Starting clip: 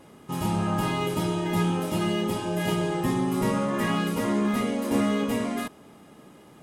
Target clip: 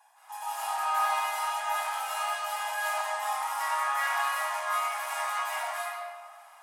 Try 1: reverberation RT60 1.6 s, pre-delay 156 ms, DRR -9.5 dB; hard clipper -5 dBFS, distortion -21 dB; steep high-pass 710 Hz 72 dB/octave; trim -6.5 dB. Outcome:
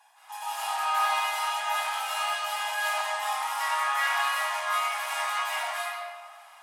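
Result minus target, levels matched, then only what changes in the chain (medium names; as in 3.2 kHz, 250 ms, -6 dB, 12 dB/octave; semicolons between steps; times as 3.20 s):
4 kHz band +4.5 dB
add after steep high-pass: peaking EQ 3.3 kHz -7 dB 1.6 oct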